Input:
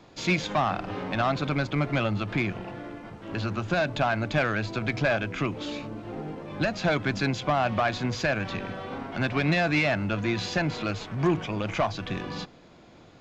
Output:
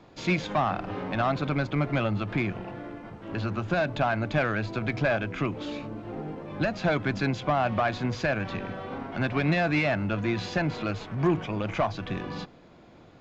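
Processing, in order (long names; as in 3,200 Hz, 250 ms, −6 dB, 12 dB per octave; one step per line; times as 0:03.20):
high-shelf EQ 3,600 Hz −8.5 dB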